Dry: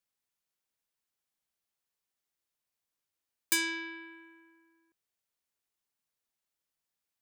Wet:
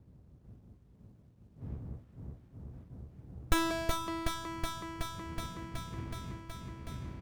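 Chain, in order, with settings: wind noise 120 Hz -52 dBFS; HPF 61 Hz; high shelf 9900 Hz -6 dB; doubler 16 ms -11.5 dB; echo with dull and thin repeats by turns 0.186 s, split 1400 Hz, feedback 89%, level -2 dB; running maximum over 17 samples; gain +4 dB

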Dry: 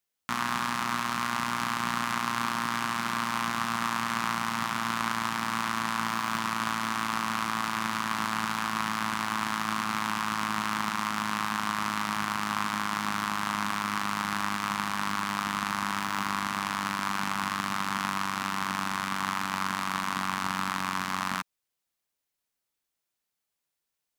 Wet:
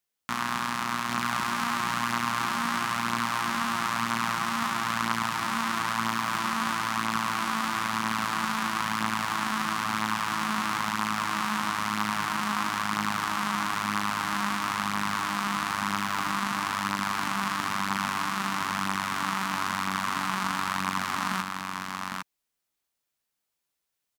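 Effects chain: echo 0.804 s -3.5 dB

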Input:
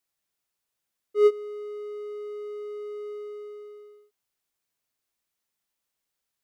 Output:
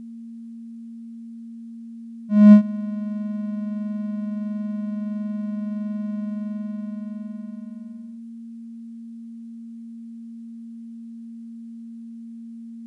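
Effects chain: whine 460 Hz -43 dBFS; speed mistake 15 ips tape played at 7.5 ips; gain +8 dB

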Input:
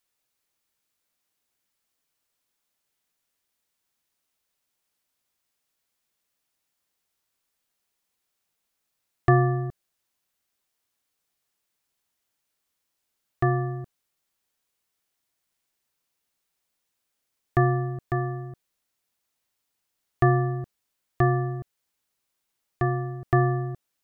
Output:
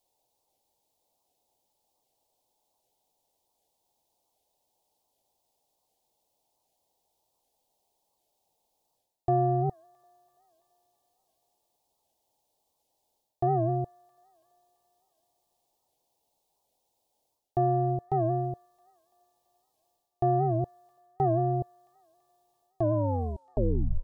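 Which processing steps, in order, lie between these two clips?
tape stop at the end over 1.25 s; EQ curve 120 Hz 0 dB, 200 Hz -3 dB, 860 Hz +11 dB, 1400 Hz -25 dB, 3600 Hz -4 dB; reverse; compressor 4:1, threshold -29 dBFS, peak gain reduction 15.5 dB; reverse; thin delay 0.334 s, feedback 55%, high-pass 1500 Hz, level -16 dB; record warp 78 rpm, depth 160 cents; gain +4.5 dB

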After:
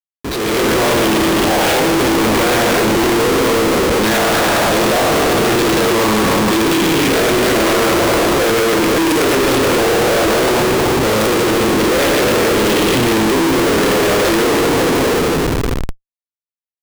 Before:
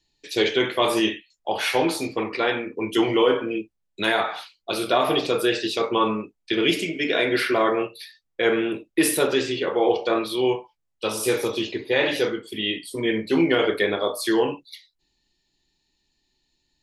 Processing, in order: spectral trails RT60 2.35 s; tilt -3.5 dB/oct; de-hum 62.78 Hz, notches 7; harmonic-percussive split percussive +8 dB; Schroeder reverb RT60 1.8 s, combs from 33 ms, DRR 3 dB; compressor, threshold -10 dBFS, peak gain reduction 8.5 dB; Schmitt trigger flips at -31 dBFS; AGC gain up to 11 dB; gain -8 dB

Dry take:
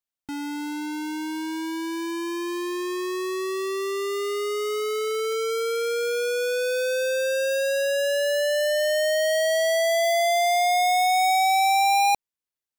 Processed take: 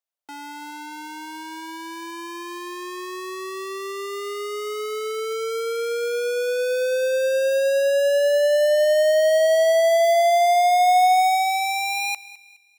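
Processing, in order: thinning echo 0.209 s, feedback 35%, level -18 dB; high-pass sweep 580 Hz -> 2400 Hz, 10.76–12.59; gain -2 dB

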